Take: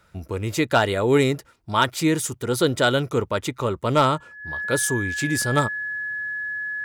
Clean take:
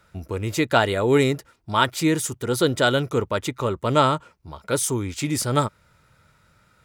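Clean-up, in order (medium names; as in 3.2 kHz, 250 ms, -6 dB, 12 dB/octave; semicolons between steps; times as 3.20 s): clip repair -8 dBFS; band-stop 1.7 kHz, Q 30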